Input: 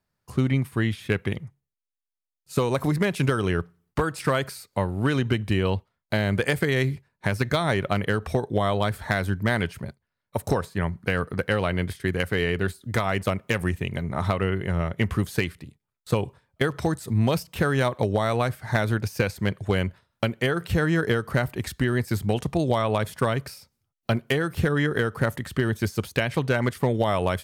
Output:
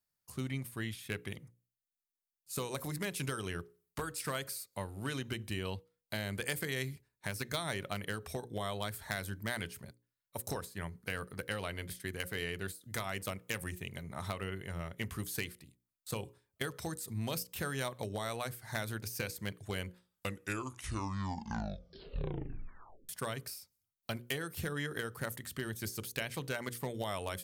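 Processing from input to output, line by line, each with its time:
0:19.88: tape stop 3.21 s
whole clip: first-order pre-emphasis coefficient 0.8; mains-hum notches 60/120/180/240/300/360/420/480/540 Hz; level −1.5 dB

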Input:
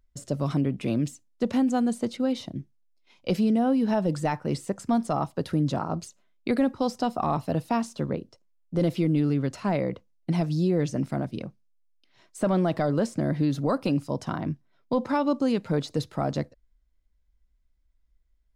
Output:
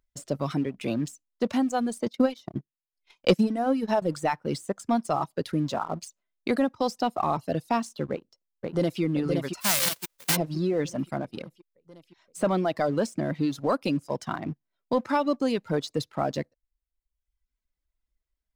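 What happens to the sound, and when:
0:02.06–0:04.02: transient designer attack +9 dB, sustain −9 dB
0:08.11–0:09.01: delay throw 520 ms, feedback 65%, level −3 dB
0:09.60–0:10.35: spectral envelope flattened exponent 0.1
whole clip: reverb reduction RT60 1 s; low-shelf EQ 220 Hz −9 dB; leveller curve on the samples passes 1; level −1 dB

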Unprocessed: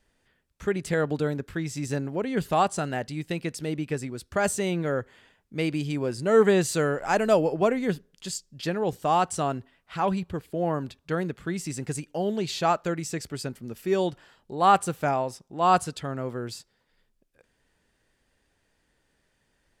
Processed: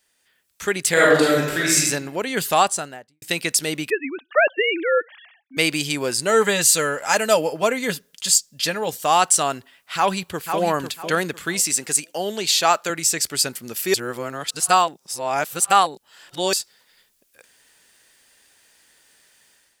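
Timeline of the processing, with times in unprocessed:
0:00.92–0:01.80: thrown reverb, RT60 0.91 s, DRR −5.5 dB
0:02.46–0:03.22: fade out and dull
0:03.90–0:05.57: three sine waves on the formant tracks
0:06.31–0:09.04: notch comb filter 370 Hz
0:09.96–0:10.60: delay throw 500 ms, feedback 25%, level −7.5 dB
0:11.59–0:12.90: high-pass filter 170 Hz
0:13.94–0:16.53: reverse
whole clip: spectral tilt +4 dB per octave; automatic gain control gain up to 11 dB; level −1 dB

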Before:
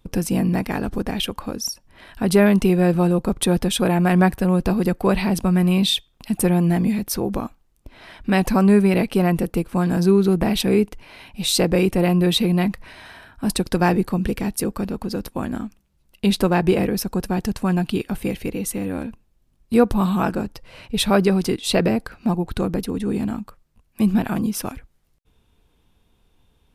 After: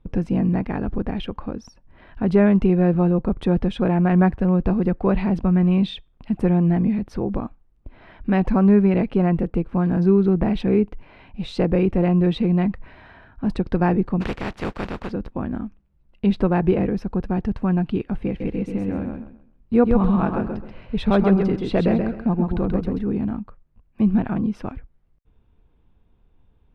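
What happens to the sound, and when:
0:14.20–0:15.10: compressing power law on the bin magnitudes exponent 0.33
0:18.27–0:23.01: repeating echo 132 ms, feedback 26%, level −4 dB
whole clip: low-pass filter 2,400 Hz 12 dB per octave; spectral tilt −1.5 dB per octave; level −3.5 dB

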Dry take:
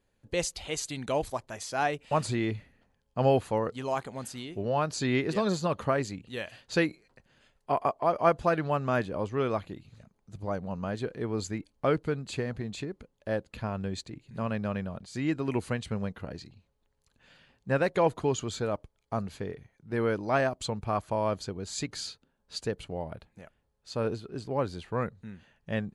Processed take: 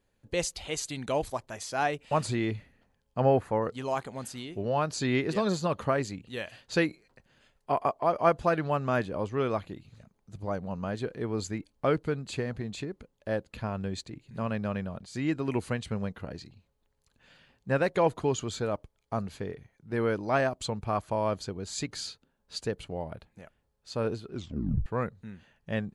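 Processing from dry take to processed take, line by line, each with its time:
0:03.20–0:03.62: high shelf with overshoot 2,400 Hz −8 dB, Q 1.5
0:24.32: tape stop 0.54 s

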